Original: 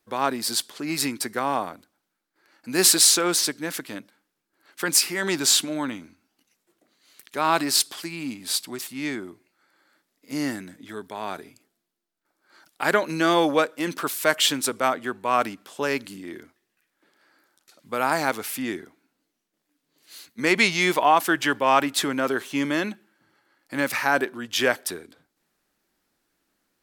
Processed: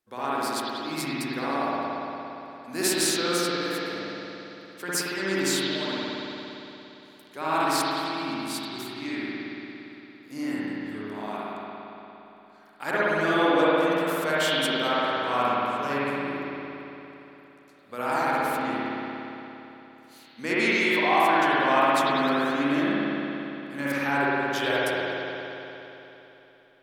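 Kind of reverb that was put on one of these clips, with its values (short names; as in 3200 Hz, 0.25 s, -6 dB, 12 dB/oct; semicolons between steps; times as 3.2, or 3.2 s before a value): spring tank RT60 3.4 s, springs 57 ms, chirp 50 ms, DRR -9.5 dB; gain -10.5 dB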